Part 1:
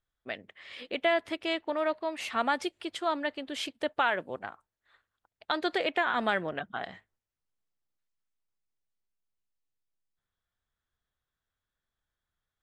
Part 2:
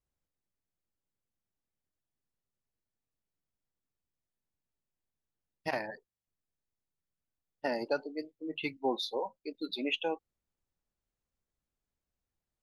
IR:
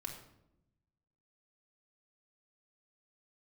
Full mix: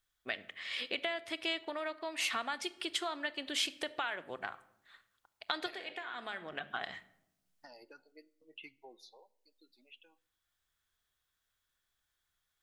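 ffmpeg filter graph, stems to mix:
-filter_complex "[0:a]acompressor=threshold=0.0158:ratio=6,volume=1.12,asplit=2[s0][s1];[s1]volume=0.447[s2];[1:a]acompressor=threshold=0.00631:ratio=3,asplit=2[s3][s4];[s4]afreqshift=-2.8[s5];[s3][s5]amix=inputs=2:normalize=1,volume=0.473,afade=t=out:st=8.87:d=0.5:silence=0.316228,asplit=3[s6][s7][s8];[s7]volume=0.211[s9];[s8]apad=whole_len=556573[s10];[s0][s10]sidechaincompress=threshold=0.001:ratio=8:attack=5.3:release=981[s11];[2:a]atrim=start_sample=2205[s12];[s2][s9]amix=inputs=2:normalize=0[s13];[s13][s12]afir=irnorm=-1:irlink=0[s14];[s11][s6][s14]amix=inputs=3:normalize=0,tiltshelf=f=1300:g=-6"

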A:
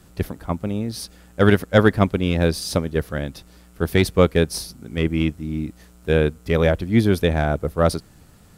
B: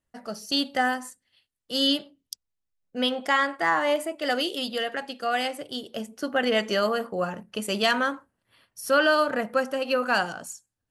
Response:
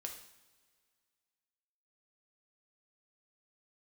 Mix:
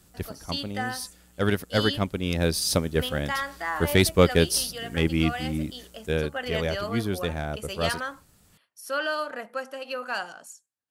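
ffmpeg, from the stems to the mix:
-filter_complex "[0:a]highshelf=f=3300:g=9,volume=0.708,afade=t=in:st=2.07:d=0.72:silence=0.473151,afade=t=out:st=5.63:d=0.66:silence=0.398107[s0];[1:a]highpass=f=520:p=1,volume=0.501[s1];[s0][s1]amix=inputs=2:normalize=0"

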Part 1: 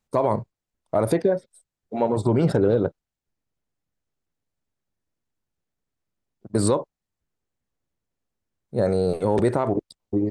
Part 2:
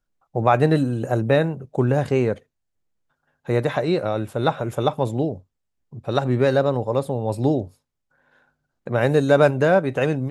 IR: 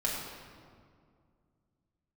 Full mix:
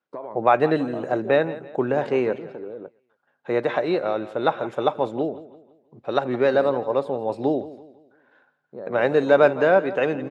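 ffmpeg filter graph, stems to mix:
-filter_complex "[0:a]lowpass=f=2000:p=1,acompressor=threshold=0.0224:ratio=3,volume=0.841[s0];[1:a]volume=1.06,asplit=2[s1][s2];[s2]volume=0.15,aecho=0:1:167|334|501|668|835:1|0.39|0.152|0.0593|0.0231[s3];[s0][s1][s3]amix=inputs=3:normalize=0,highpass=300,lowpass=3500"

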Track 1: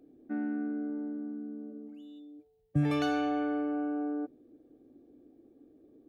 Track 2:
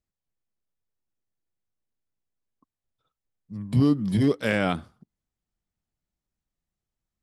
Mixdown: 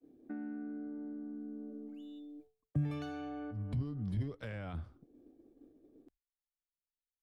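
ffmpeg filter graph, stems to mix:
-filter_complex "[0:a]volume=1[s0];[1:a]lowpass=f=2400:p=1,asubboost=boost=7.5:cutoff=71,alimiter=limit=0.0841:level=0:latency=1:release=30,volume=0.596,asplit=2[s1][s2];[s2]apad=whole_len=268339[s3];[s0][s3]sidechaincompress=threshold=0.00282:ratio=8:attack=6.4:release=290[s4];[s4][s1]amix=inputs=2:normalize=0,agate=range=0.0224:threshold=0.002:ratio=3:detection=peak,acrossover=split=150[s5][s6];[s6]acompressor=threshold=0.00708:ratio=5[s7];[s5][s7]amix=inputs=2:normalize=0"

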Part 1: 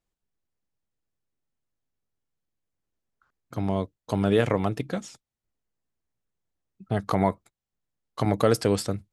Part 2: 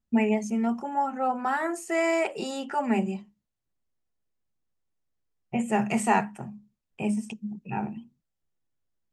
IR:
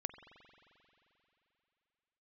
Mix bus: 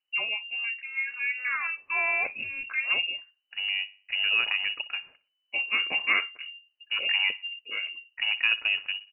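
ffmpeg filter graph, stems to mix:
-filter_complex "[0:a]deesser=0.8,volume=0.631,asplit=2[s0][s1];[s1]volume=0.126[s2];[1:a]dynaudnorm=f=130:g=17:m=1.78,volume=0.447[s3];[s2]aecho=0:1:61|122|183|244|305:1|0.37|0.137|0.0507|0.0187[s4];[s0][s3][s4]amix=inputs=3:normalize=0,lowpass=f=2600:t=q:w=0.5098,lowpass=f=2600:t=q:w=0.6013,lowpass=f=2600:t=q:w=0.9,lowpass=f=2600:t=q:w=2.563,afreqshift=-3000"

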